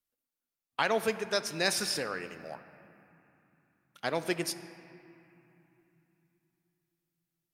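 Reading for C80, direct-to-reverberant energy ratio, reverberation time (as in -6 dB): 12.5 dB, 11.0 dB, 3.0 s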